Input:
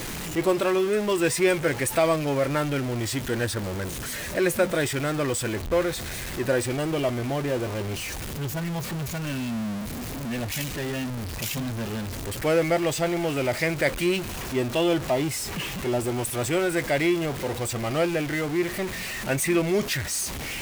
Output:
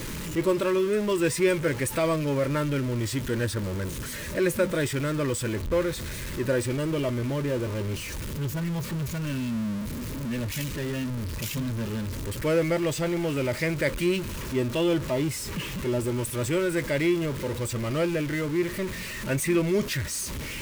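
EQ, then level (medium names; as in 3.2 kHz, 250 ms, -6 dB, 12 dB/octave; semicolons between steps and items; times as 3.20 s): Butterworth band-stop 740 Hz, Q 4; bass shelf 350 Hz +5.5 dB; -3.5 dB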